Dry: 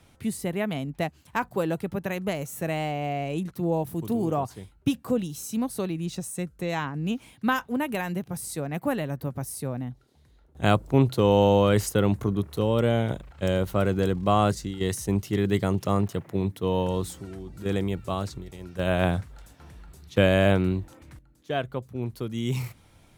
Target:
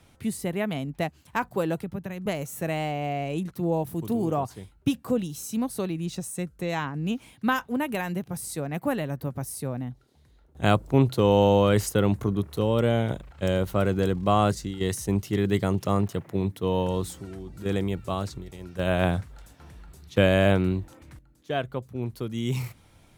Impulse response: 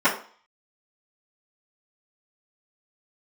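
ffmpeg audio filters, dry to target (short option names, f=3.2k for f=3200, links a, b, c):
-filter_complex "[0:a]asettb=1/sr,asplit=3[a][b][c];[a]atrim=end=1.824[d];[b]atrim=start=1.82:end=2.26,asetpts=PTS-STARTPTS,afade=t=in:d=0.004:c=qsin,afade=t=out:st=0.436:d=0.004:c=qsin,acrossover=split=220[e][f];[f]acompressor=threshold=-37dB:ratio=5[g];[e][g]amix=inputs=2:normalize=0[h];[c]atrim=start=2.256[i];[d][h]acrossfade=d=0.004:c1=hsin:c2=qsin[j];[j][i]acrossfade=d=0.004:c1=qsin:c2=hsin"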